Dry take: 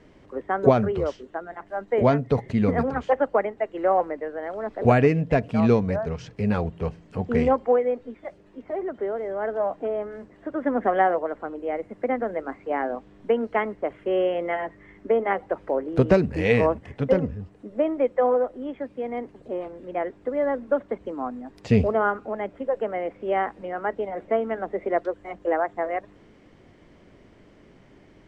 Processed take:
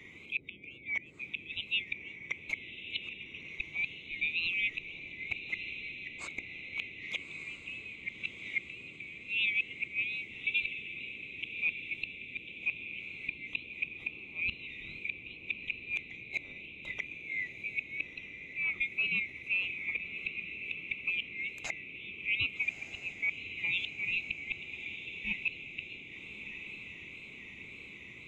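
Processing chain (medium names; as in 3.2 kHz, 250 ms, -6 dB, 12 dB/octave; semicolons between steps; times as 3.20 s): split-band scrambler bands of 2 kHz; 6.72–9.18 s: peaking EQ 3.2 kHz +14 dB 2.9 oct; compression 2:1, threshold -29 dBFS, peak gain reduction 14.5 dB; inverted gate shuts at -21 dBFS, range -25 dB; band noise 61–410 Hz -59 dBFS; wow and flutter 93 cents; echo that smears into a reverb 1240 ms, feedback 56%, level -9 dB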